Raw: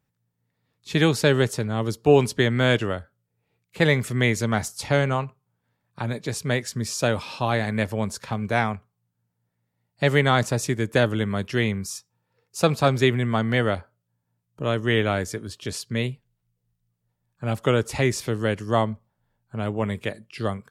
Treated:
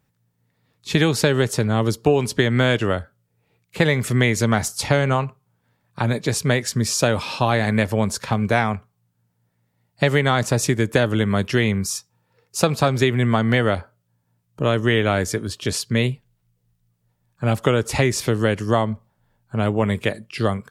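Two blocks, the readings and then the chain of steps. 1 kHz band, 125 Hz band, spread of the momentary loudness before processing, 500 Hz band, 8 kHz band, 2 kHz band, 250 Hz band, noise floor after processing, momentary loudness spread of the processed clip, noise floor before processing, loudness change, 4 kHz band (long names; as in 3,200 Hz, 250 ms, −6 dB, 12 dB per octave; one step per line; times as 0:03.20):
+3.0 dB, +4.0 dB, 12 LU, +2.5 dB, +6.5 dB, +3.0 dB, +4.0 dB, −70 dBFS, 7 LU, −78 dBFS, +3.0 dB, +3.5 dB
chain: downward compressor 6 to 1, threshold −21 dBFS, peak gain reduction 10.5 dB
level +7.5 dB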